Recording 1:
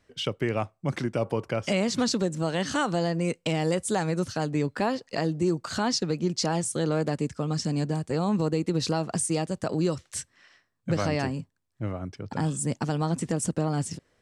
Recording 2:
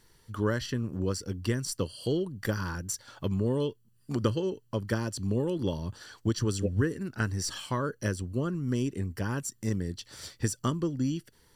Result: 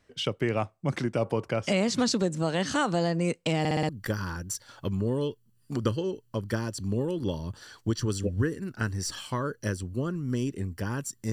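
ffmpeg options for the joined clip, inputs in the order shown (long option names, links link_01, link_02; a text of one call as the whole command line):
ffmpeg -i cue0.wav -i cue1.wav -filter_complex "[0:a]apad=whole_dur=11.32,atrim=end=11.32,asplit=5[link_01][link_02][link_03][link_04][link_05];[link_01]atrim=end=3.652[link_06];[link_02]atrim=start=3.588:end=3.652[link_07];[link_03]atrim=start=3.588:end=3.652[link_08];[link_04]atrim=start=3.588:end=3.652[link_09];[link_05]atrim=start=3.588:end=3.652[link_10];[1:a]atrim=start=2.278:end=9.71[link_11];[link_06][link_07]acrossfade=duration=0.004:curve1=hsin:curve2=hsin[link_12];[link_12][link_08]acrossfade=duration=0.004:curve1=hsin:curve2=hsin[link_13];[link_13][link_09]acrossfade=duration=0.004:curve1=hsin:curve2=hsin[link_14];[link_14][link_10]acrossfade=duration=0.004:curve1=hsin:curve2=hsin[link_15];[link_15][link_11]acrossfade=duration=0.004:curve1=hsin:curve2=hsin" out.wav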